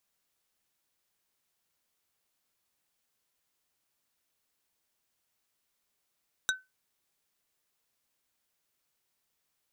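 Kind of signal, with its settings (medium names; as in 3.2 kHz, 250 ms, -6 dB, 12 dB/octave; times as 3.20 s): wood hit plate, lowest mode 1.52 kHz, decay 0.21 s, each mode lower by 1 dB, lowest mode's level -23 dB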